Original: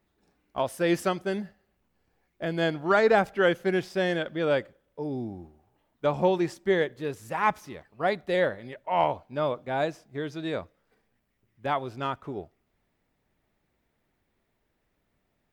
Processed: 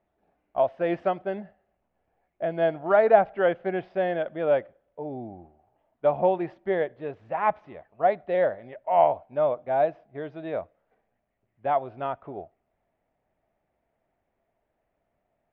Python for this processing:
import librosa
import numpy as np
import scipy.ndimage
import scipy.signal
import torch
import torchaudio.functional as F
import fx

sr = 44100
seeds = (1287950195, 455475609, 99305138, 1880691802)

y = scipy.signal.sosfilt(scipy.signal.butter(4, 2900.0, 'lowpass', fs=sr, output='sos'), x)
y = fx.peak_eq(y, sr, hz=670.0, db=13.5, octaves=0.71)
y = y * 10.0 ** (-5.5 / 20.0)